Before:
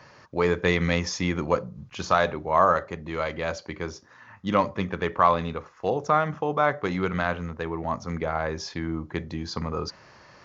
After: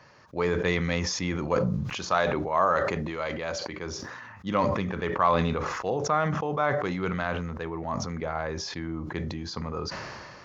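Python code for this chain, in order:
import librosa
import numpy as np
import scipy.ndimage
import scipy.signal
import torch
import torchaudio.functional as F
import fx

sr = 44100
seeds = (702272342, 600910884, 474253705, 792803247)

y = fx.low_shelf(x, sr, hz=140.0, db=-6.5, at=(1.84, 3.86))
y = fx.sustainer(y, sr, db_per_s=27.0)
y = y * 10.0 ** (-4.0 / 20.0)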